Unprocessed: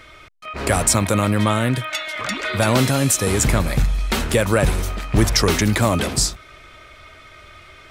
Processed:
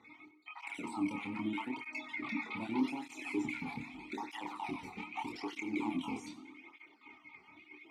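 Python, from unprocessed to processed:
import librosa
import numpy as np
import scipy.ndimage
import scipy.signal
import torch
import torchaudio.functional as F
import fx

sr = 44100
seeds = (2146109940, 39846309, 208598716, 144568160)

p1 = fx.spec_dropout(x, sr, seeds[0], share_pct=45)
p2 = fx.highpass(p1, sr, hz=140.0, slope=6)
p3 = fx.over_compress(p2, sr, threshold_db=-28.0, ratio=-0.5)
p4 = p2 + (p3 * librosa.db_to_amplitude(2.0))
p5 = 10.0 ** (-10.0 / 20.0) * (np.abs((p4 / 10.0 ** (-10.0 / 20.0) + 3.0) % 4.0 - 2.0) - 1.0)
p6 = fx.vowel_filter(p5, sr, vowel='u')
p7 = fx.doubler(p6, sr, ms=27.0, db=-3)
p8 = p7 + 10.0 ** (-17.0 / 20.0) * np.pad(p7, (int(94 * sr / 1000.0), 0))[:len(p7)]
p9 = fx.rev_plate(p8, sr, seeds[1], rt60_s=1.7, hf_ratio=0.55, predelay_ms=0, drr_db=13.5)
p10 = fx.flanger_cancel(p9, sr, hz=0.81, depth_ms=3.3)
y = p10 * librosa.db_to_amplitude(-4.0)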